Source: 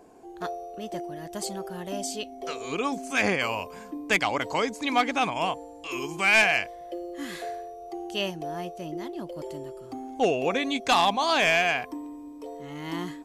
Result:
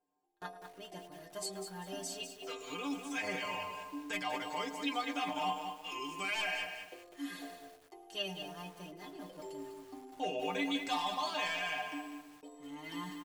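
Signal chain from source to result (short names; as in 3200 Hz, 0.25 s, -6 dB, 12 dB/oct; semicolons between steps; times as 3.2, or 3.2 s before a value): gate with hold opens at -33 dBFS; low shelf 330 Hz -7 dB; comb 6.8 ms, depth 49%; limiter -18.5 dBFS, peak gain reduction 9 dB; metallic resonator 91 Hz, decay 0.28 s, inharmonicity 0.008; tape echo 0.107 s, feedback 62%, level -14 dB, low-pass 2400 Hz; lo-fi delay 0.198 s, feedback 35%, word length 9-bit, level -7 dB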